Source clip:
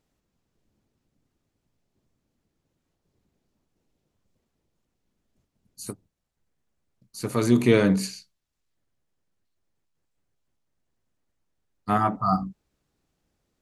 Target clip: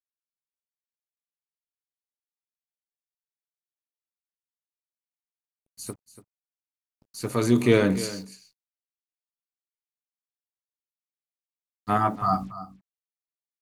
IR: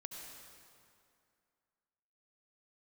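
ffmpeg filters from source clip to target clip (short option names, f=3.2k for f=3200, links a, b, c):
-af "equalizer=f=180:t=o:w=0.46:g=-5,acrusher=bits=8:mix=0:aa=0.5,aecho=1:1:287:0.178"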